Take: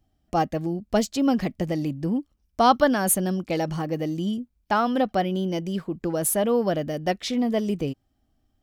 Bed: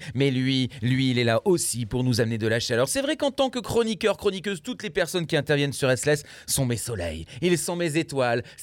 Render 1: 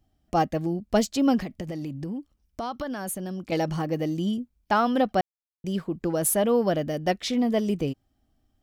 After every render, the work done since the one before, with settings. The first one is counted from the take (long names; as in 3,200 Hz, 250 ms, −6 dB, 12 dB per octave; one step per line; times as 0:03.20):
0:01.38–0:03.52: downward compressor, threshold −29 dBFS
0:05.21–0:05.64: silence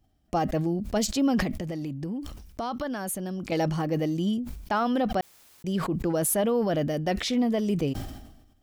brickwall limiter −17 dBFS, peak gain reduction 6 dB
level that may fall only so fast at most 54 dB per second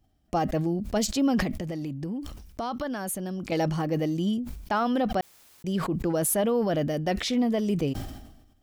no processing that can be heard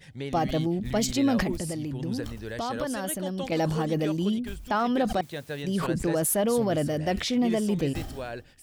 mix in bed −13 dB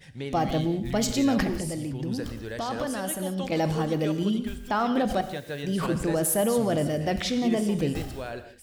reverb whose tail is shaped and stops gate 210 ms flat, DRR 9 dB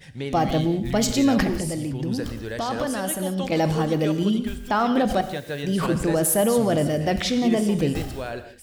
level +4 dB